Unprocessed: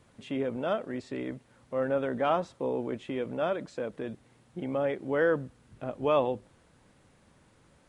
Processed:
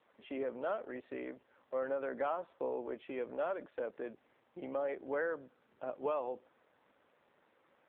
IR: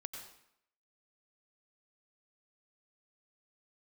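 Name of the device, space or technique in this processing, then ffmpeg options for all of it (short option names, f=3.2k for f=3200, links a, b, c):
voicemail: -af "highpass=420,lowpass=2.7k,acompressor=threshold=-29dB:ratio=10,volume=-1.5dB" -ar 8000 -c:a libopencore_amrnb -b:a 7400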